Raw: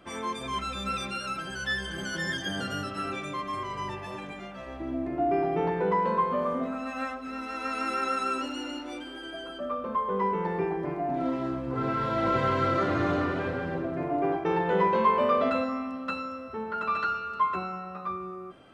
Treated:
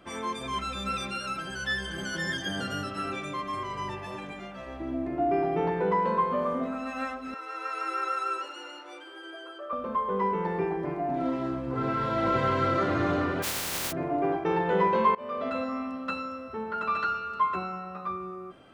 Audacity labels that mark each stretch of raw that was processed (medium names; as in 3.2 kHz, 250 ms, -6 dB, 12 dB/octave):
7.340000	9.730000	rippled Chebyshev high-pass 310 Hz, ripple 6 dB
13.420000	13.910000	spectral contrast reduction exponent 0.12
15.150000	15.820000	fade in, from -22.5 dB